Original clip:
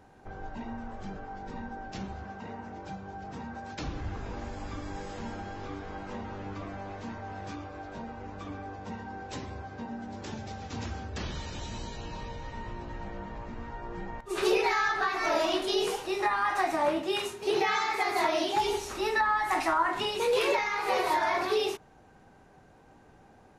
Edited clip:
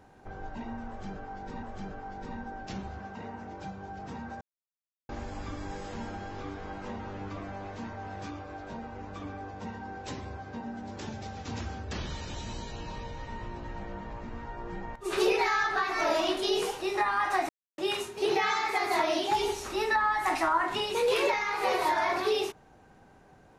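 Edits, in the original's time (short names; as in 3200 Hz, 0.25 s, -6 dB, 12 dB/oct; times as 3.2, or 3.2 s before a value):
0.88–1.63 loop, 2 plays
3.66–4.34 mute
16.74–17.03 mute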